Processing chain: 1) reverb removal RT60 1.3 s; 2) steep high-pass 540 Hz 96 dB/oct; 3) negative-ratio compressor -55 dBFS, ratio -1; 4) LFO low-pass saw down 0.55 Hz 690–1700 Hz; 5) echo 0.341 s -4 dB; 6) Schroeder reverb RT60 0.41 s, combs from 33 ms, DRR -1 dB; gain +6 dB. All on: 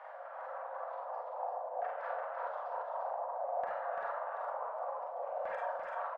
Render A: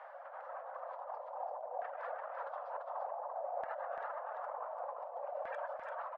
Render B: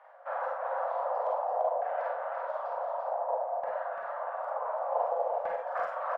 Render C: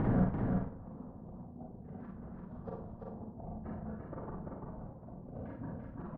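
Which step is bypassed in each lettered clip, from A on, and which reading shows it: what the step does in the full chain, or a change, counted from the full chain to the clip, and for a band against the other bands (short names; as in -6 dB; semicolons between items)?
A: 6, echo-to-direct 3.5 dB to -4.0 dB; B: 3, crest factor change +2.5 dB; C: 2, crest factor change +7.0 dB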